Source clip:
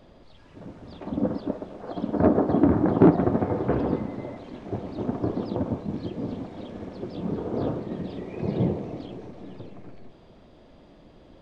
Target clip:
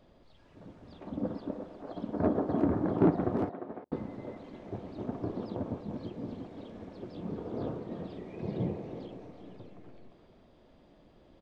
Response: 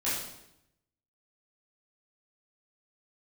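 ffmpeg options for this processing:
-filter_complex "[0:a]asettb=1/sr,asplit=3[a][b][c];[a]atrim=end=3.494[d];[b]atrim=start=3.49:end=3.92,asetpts=PTS-STARTPTS,afade=t=in:d=0.004:c=qsin,afade=t=out:st=0.426:d=0.004:c=qsin,agate=range=-52dB:threshold=-18dB:ratio=16:detection=peak[e];[c]atrim=start=3.916[f];[d][e]acrossfade=d=0.004:c1=hsin:c2=qsin[g];[g][f]acrossfade=d=0.004:c1=qsin:c2=hsin,asplit=2[h][i];[i]adelay=350,highpass=300,lowpass=3.4k,asoftclip=type=hard:threshold=-12dB,volume=-7dB[j];[h][j]amix=inputs=2:normalize=0,volume=-8.5dB"

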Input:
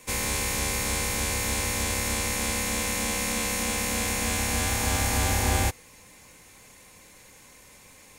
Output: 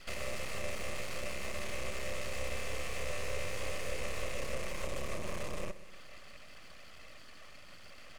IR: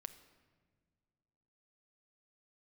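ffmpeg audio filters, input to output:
-filter_complex "[0:a]aemphasis=mode=reproduction:type=75fm,bandreject=f=7.3k:w=22,acrossover=split=260|6000[a][b][c];[b]acompressor=threshold=-43dB:ratio=5[d];[a][d][c]amix=inputs=3:normalize=0,asoftclip=type=tanh:threshold=-29dB,crystalizer=i=5:c=0,asplit=2[e][f];[f]asetrate=35002,aresample=44100,atempo=1.25992,volume=-9dB[g];[e][g]amix=inputs=2:normalize=0,asplit=3[h][i][j];[h]bandpass=f=300:t=q:w=8,volume=0dB[k];[i]bandpass=f=870:t=q:w=8,volume=-6dB[l];[j]bandpass=f=2.24k:t=q:w=8,volume=-9dB[m];[k][l][m]amix=inputs=3:normalize=0,aeval=exprs='abs(val(0))':c=same,aecho=1:1:128|256|384|512|640:0.158|0.0856|0.0462|0.025|0.0135,volume=13.5dB"

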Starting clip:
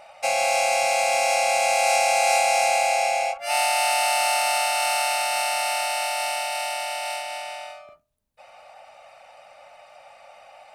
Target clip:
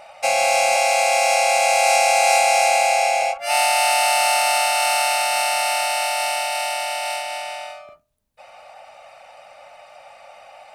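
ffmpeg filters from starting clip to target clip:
-filter_complex "[0:a]asettb=1/sr,asplit=3[a][b][c];[a]atrim=end=0.764[d];[b]atrim=start=0.76:end=3.22,asetpts=PTS-STARTPTS,afade=t=in:d=0.004:c=qsin,afade=t=out:st=2.456:d=0.004:c=qsin,highpass=f=440:w=0.5412,highpass=f=440:w=1.3066[e];[c]atrim=start=3.216[f];[d][e]acrossfade=d=0.004:c1=hsin:c2=qsin[g];[g][f]acrossfade=d=0.004:c1=qsin:c2=hsin,volume=4dB"

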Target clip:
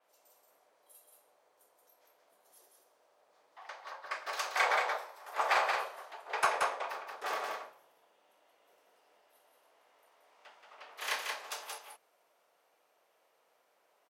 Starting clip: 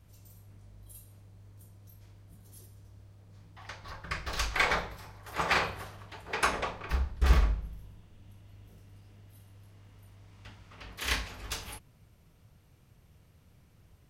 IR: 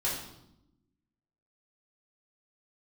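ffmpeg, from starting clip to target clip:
-af "highpass=f=600:w=0.5412,highpass=f=600:w=1.3066,tiltshelf=f=1.1k:g=7.5,asoftclip=type=hard:threshold=-18dB,aecho=1:1:178:0.631,adynamicequalizer=threshold=0.00316:dfrequency=5500:dqfactor=0.7:tfrequency=5500:tqfactor=0.7:attack=5:release=100:ratio=0.375:range=2:mode=boostabove:tftype=highshelf"

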